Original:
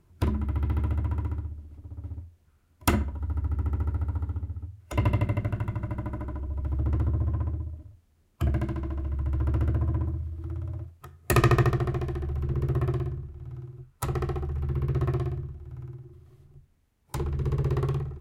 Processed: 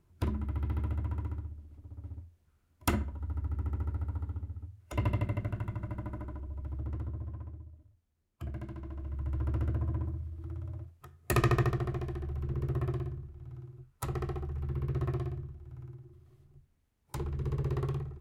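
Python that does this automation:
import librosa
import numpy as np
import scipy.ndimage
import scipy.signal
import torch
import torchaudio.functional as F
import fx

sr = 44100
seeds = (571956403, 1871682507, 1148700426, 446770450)

y = fx.gain(x, sr, db=fx.line((6.19, -6.0), (7.43, -14.0), (8.46, -14.0), (9.29, -6.0)))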